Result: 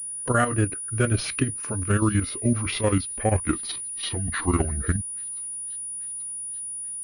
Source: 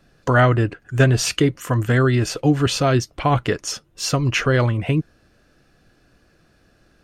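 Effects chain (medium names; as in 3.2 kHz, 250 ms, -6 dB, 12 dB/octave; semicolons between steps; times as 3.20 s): pitch bend over the whole clip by -11 st starting unshifted; peaking EQ 880 Hz -10 dB 0.24 oct; level held to a coarse grid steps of 9 dB; feedback echo behind a high-pass 835 ms, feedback 62%, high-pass 2.6 kHz, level -24 dB; class-D stage that switches slowly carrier 9.7 kHz; trim -1 dB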